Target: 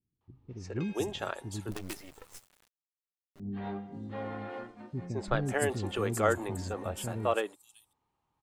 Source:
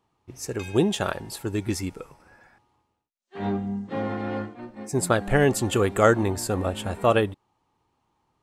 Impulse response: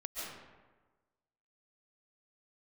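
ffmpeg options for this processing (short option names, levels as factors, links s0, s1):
-filter_complex "[0:a]acrossover=split=300|5400[s0][s1][s2];[s1]adelay=210[s3];[s2]adelay=590[s4];[s0][s3][s4]amix=inputs=3:normalize=0,asettb=1/sr,asplit=3[s5][s6][s7];[s5]atrim=end=1.714[s8];[s6]atrim=start=1.71:end=3.4,asetpts=PTS-STARTPTS,afade=t=in:d=0.004:c=qsin,afade=t=out:st=1.686:d=0.004:c=qsin,acrusher=bits=5:dc=4:mix=0:aa=0.000001[s9];[s7]atrim=start=3.396[s10];[s8][s9]acrossfade=d=0.004:c1=hsin:c2=qsin[s11];[s11][s10]acrossfade=d=0.004:c1=qsin:c2=hsin,volume=0.398"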